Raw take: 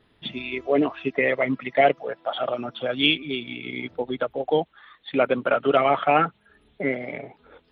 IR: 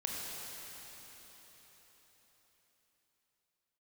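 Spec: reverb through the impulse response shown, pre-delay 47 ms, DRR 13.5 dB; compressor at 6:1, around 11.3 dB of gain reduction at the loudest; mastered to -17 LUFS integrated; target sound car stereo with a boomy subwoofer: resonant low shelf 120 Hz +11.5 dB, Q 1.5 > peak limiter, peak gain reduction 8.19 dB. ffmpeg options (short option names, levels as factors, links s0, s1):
-filter_complex "[0:a]acompressor=threshold=0.0562:ratio=6,asplit=2[s0][s1];[1:a]atrim=start_sample=2205,adelay=47[s2];[s1][s2]afir=irnorm=-1:irlink=0,volume=0.15[s3];[s0][s3]amix=inputs=2:normalize=0,lowshelf=f=120:t=q:w=1.5:g=11.5,volume=7.08,alimiter=limit=0.562:level=0:latency=1"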